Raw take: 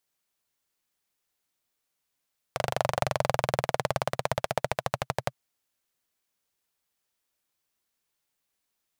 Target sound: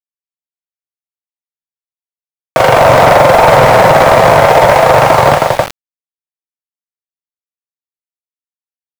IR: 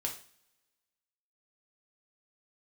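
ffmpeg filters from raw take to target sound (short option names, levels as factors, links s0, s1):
-filter_complex "[0:a]aecho=1:1:43|44|186|318:0.668|0.119|0.251|0.668,asplit=2[s0][s1];[1:a]atrim=start_sample=2205,lowpass=2600[s2];[s1][s2]afir=irnorm=-1:irlink=0,volume=0.299[s3];[s0][s3]amix=inputs=2:normalize=0,acontrast=69,asplit=2[s4][s5];[s5]highpass=f=720:p=1,volume=17.8,asoftclip=type=tanh:threshold=0.794[s6];[s4][s6]amix=inputs=2:normalize=0,lowpass=f=1300:p=1,volume=0.501,apsyclip=5.01,aeval=exprs='val(0)*gte(abs(val(0)),0.2)':c=same,areverse,acompressor=mode=upward:threshold=0.126:ratio=2.5,areverse,volume=0.841"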